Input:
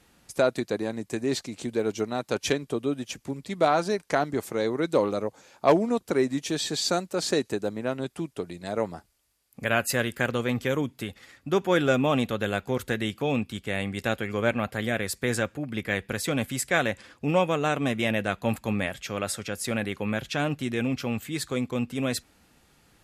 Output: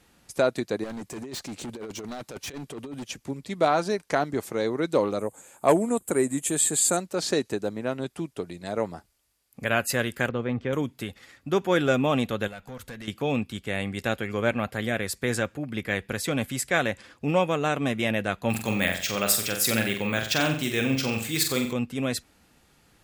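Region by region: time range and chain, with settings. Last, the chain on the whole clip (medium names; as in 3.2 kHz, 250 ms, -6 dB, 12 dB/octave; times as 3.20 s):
0.84–3.04 s: compressor with a negative ratio -30 dBFS, ratio -0.5 + hard clipper -32.5 dBFS
5.19–6.97 s: resonant high shelf 6.3 kHz +10.5 dB, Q 3 + band-stop 5.8 kHz, Q 5.1
10.29–10.73 s: high-pass 43 Hz + tape spacing loss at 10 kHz 30 dB
12.47–13.08 s: peaking EQ 380 Hz -7.5 dB 0.41 oct + compression 2:1, threshold -35 dBFS + valve stage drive 30 dB, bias 0.45
18.50–21.73 s: treble shelf 2.4 kHz +11 dB + careless resampling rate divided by 2×, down filtered, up hold + flutter echo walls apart 7.7 m, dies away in 0.48 s
whole clip: none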